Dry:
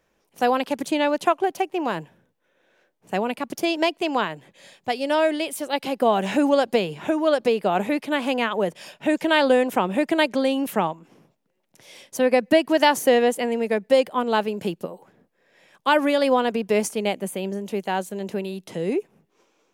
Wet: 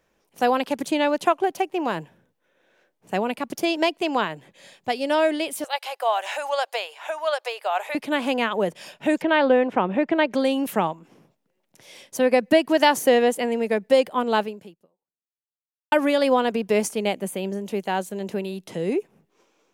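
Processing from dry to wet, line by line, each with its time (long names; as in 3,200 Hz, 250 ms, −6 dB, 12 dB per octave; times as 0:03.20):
0:05.64–0:07.95: inverse Chebyshev high-pass filter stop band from 250 Hz, stop band 50 dB
0:09.22–0:10.33: low-pass filter 2,500 Hz
0:14.41–0:15.92: fade out exponential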